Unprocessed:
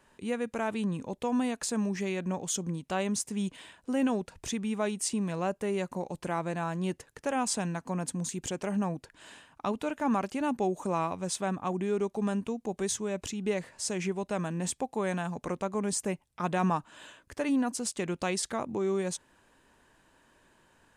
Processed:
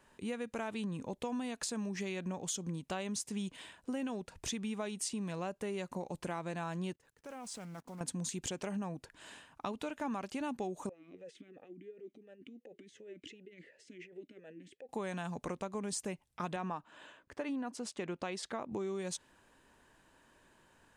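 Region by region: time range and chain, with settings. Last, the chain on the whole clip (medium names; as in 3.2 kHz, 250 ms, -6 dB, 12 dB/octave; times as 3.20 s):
6.93–8.01 s: block-companded coder 5-bit + level held to a coarse grid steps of 22 dB + loudspeaker Doppler distortion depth 0.21 ms
10.89–14.89 s: compressor with a negative ratio -37 dBFS + talking filter e-i 2.8 Hz
16.56–18.72 s: low-pass 2 kHz 6 dB/octave + bass shelf 140 Hz -11.5 dB
whole clip: dynamic bell 3.9 kHz, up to +5 dB, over -49 dBFS, Q 0.9; compression, threshold -33 dBFS; trim -2 dB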